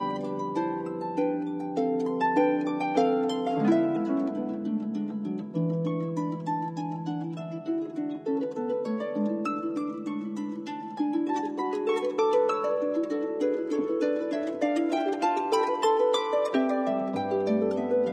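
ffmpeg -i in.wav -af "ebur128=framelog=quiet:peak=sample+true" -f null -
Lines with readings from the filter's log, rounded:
Integrated loudness:
  I:         -28.1 LUFS
  Threshold: -38.1 LUFS
Loudness range:
  LRA:         5.0 LU
  Threshold: -48.2 LUFS
  LRA low:   -31.3 LUFS
  LRA high:  -26.3 LUFS
Sample peak:
  Peak:       -9.6 dBFS
True peak:
  Peak:       -9.6 dBFS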